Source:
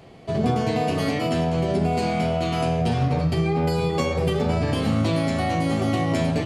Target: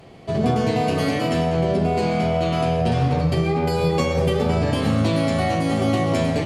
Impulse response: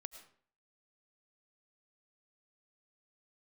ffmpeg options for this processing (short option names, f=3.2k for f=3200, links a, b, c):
-filter_complex "[0:a]asettb=1/sr,asplit=3[a][b][c];[a]atrim=end=1.464[d];[b]atrim=start=1.46:end=2.92,asetpts=PTS-STARTPTS,afade=t=in:d=0.004:c=qsin,afade=t=out:st=1.456:d=0.004:c=qsin,highshelf=f=5.7k:g=-6[e];[c]atrim=start=2.916[f];[d][e]acrossfade=d=0.004:c1=hsin:c2=qsin[g];[g][f]acrossfade=d=0.004:c1=qsin:c2=hsin[h];[1:a]atrim=start_sample=2205,asetrate=35721,aresample=44100[i];[h][i]afir=irnorm=-1:irlink=0,volume=6dB"